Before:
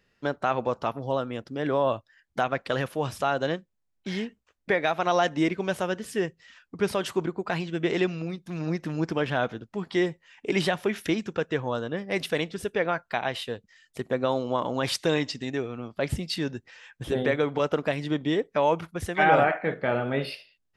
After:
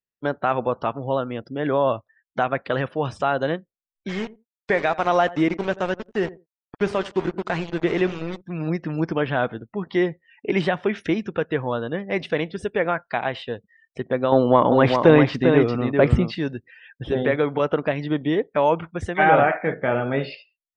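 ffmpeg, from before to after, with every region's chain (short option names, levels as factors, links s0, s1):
-filter_complex "[0:a]asettb=1/sr,asplit=3[s0][s1][s2];[s0]atrim=end=4.094[s3];[s1]atrim=start=4.09:end=8.41,asetpts=PTS-STARTPTS,afade=t=in:d=0.004:c=qsin,afade=t=out:st=4.316:d=0.004:c=qsin,bandreject=f=399.2:t=h:w=4,bandreject=f=798.4:t=h:w=4,bandreject=f=1197.6:t=h:w=4,aeval=exprs='val(0)*gte(abs(val(0)),0.0251)':c=same,asplit=2[s4][s5];[s5]adelay=87,lowpass=f=1300:p=1,volume=0.141,asplit=2[s6][s7];[s7]adelay=87,lowpass=f=1300:p=1,volume=0.2[s8];[s4][s6][s8]amix=inputs=3:normalize=0,atrim=end_sample=190512[s9];[s2]atrim=start=8.406[s10];[s3][s9]acrossfade=d=0.004:c1=hsin:c2=qsin[s11];[s11][s10]acrossfade=d=0.004:c1=qsin:c2=hsin,asettb=1/sr,asplit=3[s12][s13][s14];[s12]atrim=end=14.324[s15];[s13]atrim=start=14.32:end=16.35,asetpts=PTS-STARTPTS,afade=t=in:d=0.004:c=qsin,afade=t=out:st=2.026:d=0.004:c=qsin,aemphasis=mode=reproduction:type=75fm,acontrast=90,aecho=1:1:397:0.531,atrim=end_sample=89523[s16];[s14]atrim=start=16.346[s17];[s15][s16]acrossfade=d=0.004:c1=hsin:c2=qsin[s18];[s18][s17]acrossfade=d=0.004:c1=qsin:c2=hsin,lowpass=f=8900:w=0.5412,lowpass=f=8900:w=1.3066,afftdn=nr=35:nf=-48,acrossover=split=2800[s19][s20];[s20]acompressor=threshold=0.00447:ratio=4:attack=1:release=60[s21];[s19][s21]amix=inputs=2:normalize=0,volume=1.58"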